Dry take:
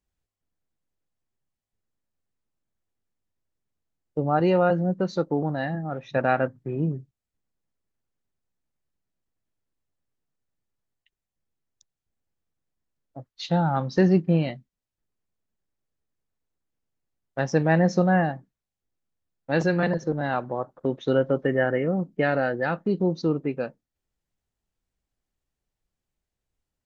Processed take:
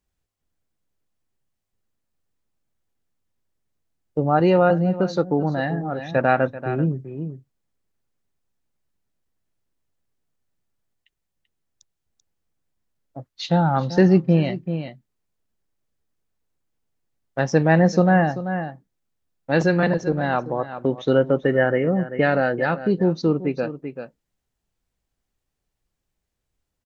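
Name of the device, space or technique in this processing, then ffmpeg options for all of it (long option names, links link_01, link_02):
ducked delay: -filter_complex "[0:a]asplit=3[link_01][link_02][link_03];[link_02]adelay=387,volume=-8.5dB[link_04];[link_03]apad=whole_len=1201233[link_05];[link_04][link_05]sidechaincompress=threshold=-28dB:ratio=8:attack=10:release=328[link_06];[link_01][link_06]amix=inputs=2:normalize=0,volume=4dB"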